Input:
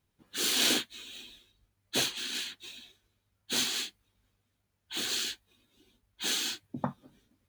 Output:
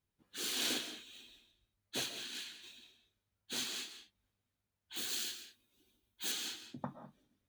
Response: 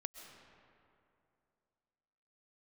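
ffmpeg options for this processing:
-filter_complex "[0:a]asettb=1/sr,asplit=3[a][b][c];[a]atrim=end=4.964[d];[b]atrim=start=4.96:end=6.32,asetpts=PTS-STARTPTS,afade=t=in:d=0.004:c=qsin,afade=t=out:st=1.356:d=0.004:c=qsin,highshelf=f=9.1k:g=11.5[e];[c]atrim=start=6.316[f];[d][e]acrossfade=d=0.004:c1=hsin:c2=qsin[g];[g][f]acrossfade=d=0.004:c1=qsin:c2=hsin[h];[1:a]atrim=start_sample=2205,afade=t=out:st=0.26:d=0.01,atrim=end_sample=11907[i];[h][i]afir=irnorm=-1:irlink=0,volume=-5.5dB"

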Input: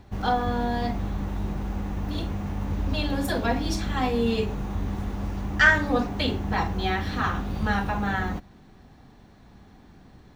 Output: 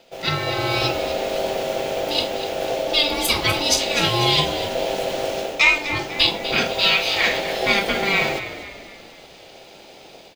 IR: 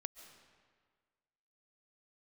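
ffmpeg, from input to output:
-filter_complex "[0:a]aeval=exprs='val(0)*sin(2*PI*590*n/s)':c=same,highshelf=f=2k:t=q:w=1.5:g=12.5,dynaudnorm=f=180:g=3:m=10dB,asettb=1/sr,asplit=3[a][b][c];[a]atrim=end=6.734[d];[b]atrim=start=6.73:end=7.26,asetpts=PTS-STARTPTS,afade=t=in:d=0.004:c=qsin,afade=t=out:st=0.526:d=0.004:c=qsin,equalizer=f=210:t=o:w=1.4:g=-11.5[e];[c]atrim=start=7.256[f];[d][e]acrossfade=d=0.004:c1=hsin:c2=qsin[g];[g][f]acrossfade=d=0.004:c1=qsin:c2=hsin,asplit=2[h][i];[i]asplit=5[j][k][l][m][n];[j]adelay=247,afreqshift=-52,volume=-12dB[o];[k]adelay=494,afreqshift=-104,volume=-18.7dB[p];[l]adelay=741,afreqshift=-156,volume=-25.5dB[q];[m]adelay=988,afreqshift=-208,volume=-32.2dB[r];[n]adelay=1235,afreqshift=-260,volume=-39dB[s];[o][p][q][r][s]amix=inputs=5:normalize=0[t];[h][t]amix=inputs=2:normalize=0,volume=-2dB"

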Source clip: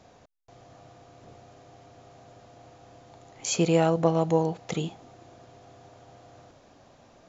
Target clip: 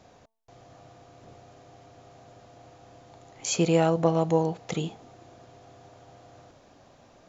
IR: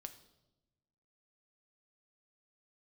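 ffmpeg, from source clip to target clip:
-af "bandreject=f=223.6:t=h:w=4,bandreject=f=447.2:t=h:w=4,bandreject=f=670.8:t=h:w=4,bandreject=f=894.4:t=h:w=4,bandreject=f=1.118k:t=h:w=4"

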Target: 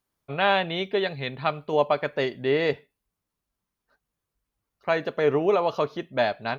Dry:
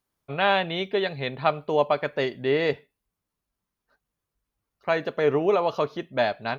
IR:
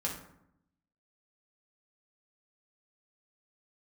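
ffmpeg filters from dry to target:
-filter_complex "[0:a]asettb=1/sr,asplit=3[a][b][c];[a]atrim=end=1.154[d];[b]atrim=start=1.15:end=1.73,asetpts=PTS-STARTPTS,afade=t=in:d=0.004:c=qsin,afade=t=out:st=0.576:d=0.004:c=qsin,equalizer=f=600:t=o:w=1.7:g=-4.5[e];[c]atrim=start=1.726[f];[d][e]acrossfade=d=0.004:c1=hsin:c2=qsin[g];[g][f]acrossfade=d=0.004:c1=qsin:c2=hsin"

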